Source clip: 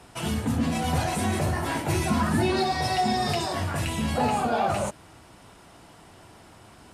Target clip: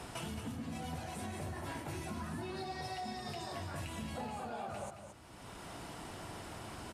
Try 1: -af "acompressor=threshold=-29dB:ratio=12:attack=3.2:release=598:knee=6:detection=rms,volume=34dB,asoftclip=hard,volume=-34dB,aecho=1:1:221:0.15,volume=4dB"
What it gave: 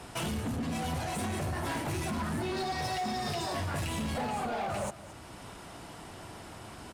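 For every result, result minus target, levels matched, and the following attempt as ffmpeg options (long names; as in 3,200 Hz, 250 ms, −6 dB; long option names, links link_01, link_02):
downward compressor: peak gain reduction −11 dB; echo-to-direct −8.5 dB
-af "acompressor=threshold=-41dB:ratio=12:attack=3.2:release=598:knee=6:detection=rms,volume=34dB,asoftclip=hard,volume=-34dB,aecho=1:1:221:0.15,volume=4dB"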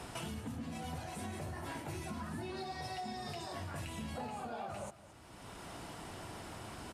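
echo-to-direct −8.5 dB
-af "acompressor=threshold=-41dB:ratio=12:attack=3.2:release=598:knee=6:detection=rms,volume=34dB,asoftclip=hard,volume=-34dB,aecho=1:1:221:0.398,volume=4dB"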